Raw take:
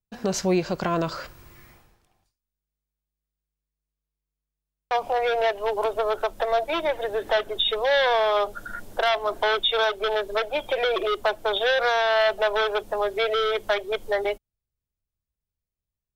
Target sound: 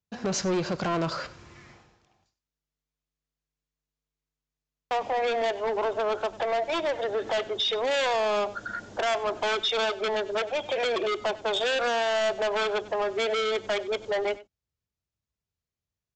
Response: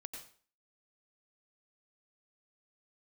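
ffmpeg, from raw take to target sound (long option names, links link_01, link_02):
-af "highpass=76,aresample=16000,asoftclip=type=tanh:threshold=-25dB,aresample=44100,aecho=1:1:96:0.119,volume=2dB"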